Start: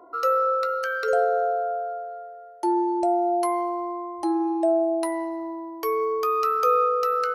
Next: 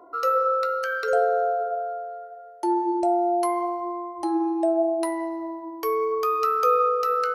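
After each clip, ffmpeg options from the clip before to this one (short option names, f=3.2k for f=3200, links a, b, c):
-af "flanger=delay=9.7:depth=1.8:regen=-84:speed=0.76:shape=sinusoidal,volume=4.5dB"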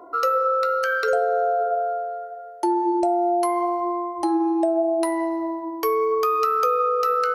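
-af "acompressor=threshold=-23dB:ratio=6,volume=5.5dB"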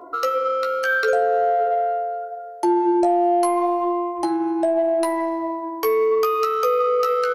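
-filter_complex "[0:a]asplit=2[a][b];[b]asoftclip=type=tanh:threshold=-23.5dB,volume=-9.5dB[c];[a][c]amix=inputs=2:normalize=0,asplit=2[d][e];[e]adelay=14,volume=-7dB[f];[d][f]amix=inputs=2:normalize=0"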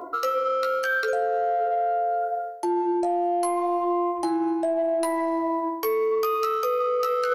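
-af "areverse,acompressor=threshold=-28dB:ratio=6,areverse,highshelf=f=6.3k:g=4,volume=5.5dB"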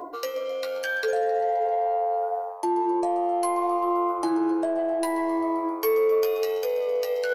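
-filter_complex "[0:a]asuperstop=centerf=1300:order=12:qfactor=5.4,aecho=1:1:6.7:0.33,asplit=7[a][b][c][d][e][f][g];[b]adelay=131,afreqshift=94,volume=-17dB[h];[c]adelay=262,afreqshift=188,volume=-20.9dB[i];[d]adelay=393,afreqshift=282,volume=-24.8dB[j];[e]adelay=524,afreqshift=376,volume=-28.6dB[k];[f]adelay=655,afreqshift=470,volume=-32.5dB[l];[g]adelay=786,afreqshift=564,volume=-36.4dB[m];[a][h][i][j][k][l][m]amix=inputs=7:normalize=0"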